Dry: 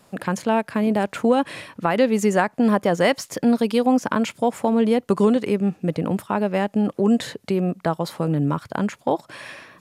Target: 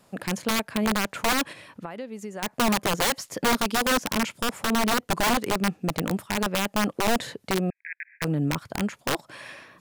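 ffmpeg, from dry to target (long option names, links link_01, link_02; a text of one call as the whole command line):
ffmpeg -i in.wav -filter_complex "[0:a]asplit=3[link_01][link_02][link_03];[link_01]afade=type=out:start_time=1.52:duration=0.02[link_04];[link_02]acompressor=threshold=-34dB:ratio=3,afade=type=in:start_time=1.52:duration=0.02,afade=type=out:start_time=2.42:duration=0.02[link_05];[link_03]afade=type=in:start_time=2.42:duration=0.02[link_06];[link_04][link_05][link_06]amix=inputs=3:normalize=0,aeval=exprs='(mod(4.47*val(0)+1,2)-1)/4.47':channel_layout=same,asettb=1/sr,asplit=3[link_07][link_08][link_09];[link_07]atrim=end=7.704[link_10];[link_08]atrim=start=7.7:end=8.22,asetpts=PTS-STARTPTS,afade=type=in:duration=0.004:curve=qsin,afade=type=out:start_time=0.516:duration=0.004:curve=qsin,asuperpass=centerf=2000:order=20:qfactor=2.1[link_11];[link_09]atrim=start=8.216[link_12];[link_10][link_11]acrossfade=duration=0.004:curve1=hsin:curve2=qsin[link_13];[link_13][link_12]acrossfade=duration=0.004:curve1=qsin:curve2=hsin,volume=-4dB" out.wav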